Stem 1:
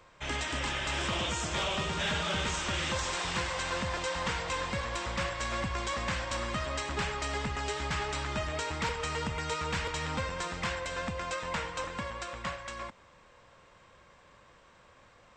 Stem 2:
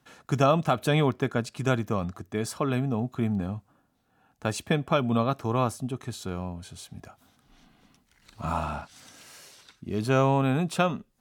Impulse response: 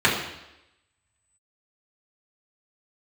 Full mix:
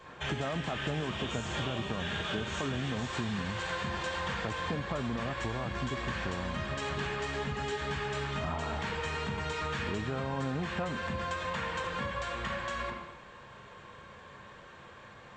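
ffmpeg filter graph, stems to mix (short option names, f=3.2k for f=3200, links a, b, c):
-filter_complex "[0:a]alimiter=level_in=6.5dB:limit=-24dB:level=0:latency=1,volume=-6.5dB,volume=-2.5dB,asplit=2[a][b];[b]volume=-10dB[c];[1:a]lowpass=1.4k,alimiter=limit=-19dB:level=0:latency=1,volume=1.5dB[d];[2:a]atrim=start_sample=2205[e];[c][e]afir=irnorm=-1:irlink=0[f];[a][d][f]amix=inputs=3:normalize=0,acompressor=threshold=-31dB:ratio=6"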